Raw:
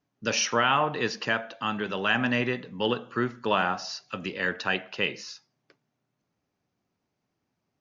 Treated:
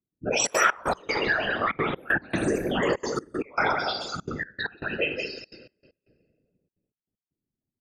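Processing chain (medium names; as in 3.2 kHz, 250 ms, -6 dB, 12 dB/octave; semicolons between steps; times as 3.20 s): spectral contrast enhancement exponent 3.2; spectral noise reduction 15 dB; on a send: loudspeakers at several distances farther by 19 m -9 dB, 61 m -6 dB; on the sum: simulated room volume 2000 m³, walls mixed, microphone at 0.75 m; whisper effect; in parallel at -3 dB: compression, threshold -40 dBFS, peak gain reduction 21 dB; on the sum: ever faster or slower copies 124 ms, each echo +5 st, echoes 3, each echo -6 dB; trance gate "xxxxxx.xx..x..xx" 193 bpm -24 dB; 1.15–2.81 s: three bands compressed up and down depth 70%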